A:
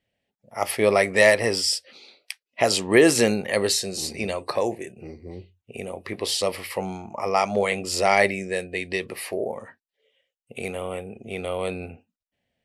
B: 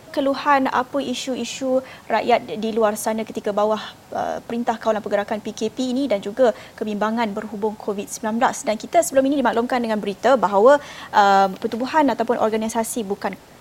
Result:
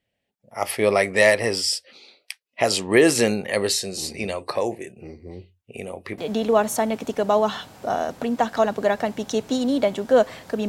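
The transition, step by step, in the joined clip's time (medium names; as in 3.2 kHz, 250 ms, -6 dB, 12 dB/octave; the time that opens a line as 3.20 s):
A
6.18 s: go over to B from 2.46 s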